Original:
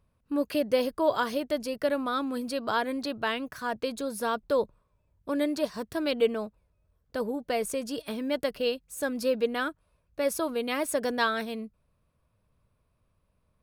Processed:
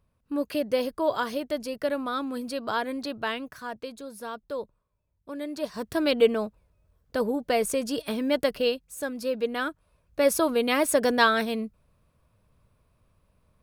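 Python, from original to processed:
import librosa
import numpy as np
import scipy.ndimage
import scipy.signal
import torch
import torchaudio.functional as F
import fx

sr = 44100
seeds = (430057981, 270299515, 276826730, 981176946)

y = fx.gain(x, sr, db=fx.line((3.31, -0.5), (3.98, -7.5), (5.42, -7.5), (5.92, 4.5), (8.55, 4.5), (9.18, -3.0), (10.22, 6.0)))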